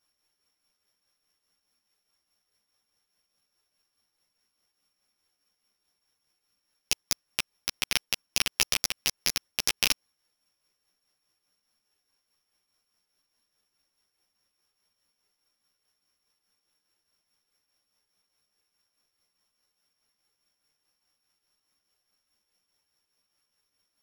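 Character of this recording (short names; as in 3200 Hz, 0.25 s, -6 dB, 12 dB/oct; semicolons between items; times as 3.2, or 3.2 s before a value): a buzz of ramps at a fixed pitch in blocks of 8 samples; tremolo triangle 4.8 Hz, depth 55%; a shimmering, thickened sound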